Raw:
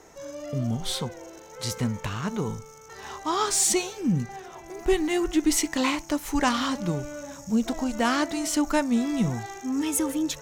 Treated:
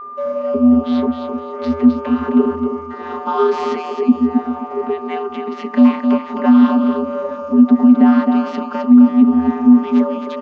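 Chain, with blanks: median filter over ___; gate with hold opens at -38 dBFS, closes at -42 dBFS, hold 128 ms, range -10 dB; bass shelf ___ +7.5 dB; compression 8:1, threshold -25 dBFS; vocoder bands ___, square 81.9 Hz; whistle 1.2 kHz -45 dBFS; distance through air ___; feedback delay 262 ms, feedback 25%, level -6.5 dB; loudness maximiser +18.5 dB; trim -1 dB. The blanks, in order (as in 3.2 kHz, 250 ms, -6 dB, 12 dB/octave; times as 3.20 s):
5 samples, 320 Hz, 32, 240 m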